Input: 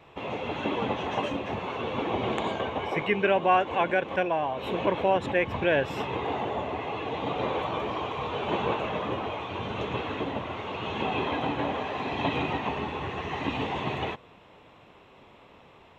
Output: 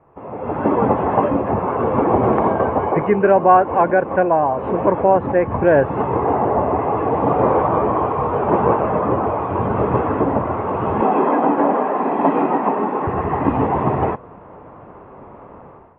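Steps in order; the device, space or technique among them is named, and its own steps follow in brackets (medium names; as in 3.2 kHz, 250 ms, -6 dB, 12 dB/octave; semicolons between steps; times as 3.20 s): 11.01–13.07 s: steep high-pass 190 Hz 36 dB/octave; action camera in a waterproof case (low-pass 1.4 kHz 24 dB/octave; level rider gain up to 15 dB; AAC 48 kbps 24 kHz)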